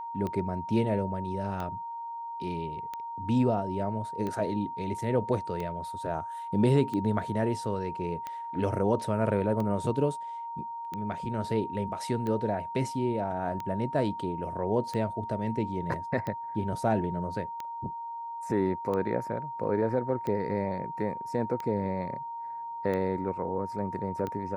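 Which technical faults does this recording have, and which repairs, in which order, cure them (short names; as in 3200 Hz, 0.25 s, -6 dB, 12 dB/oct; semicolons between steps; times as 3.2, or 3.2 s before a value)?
tick 45 rpm -22 dBFS
tone 930 Hz -35 dBFS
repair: de-click; notch 930 Hz, Q 30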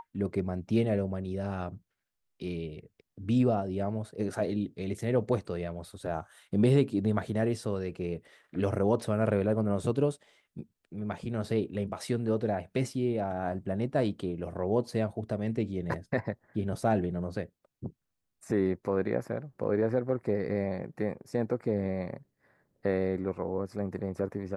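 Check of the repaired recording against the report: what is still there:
none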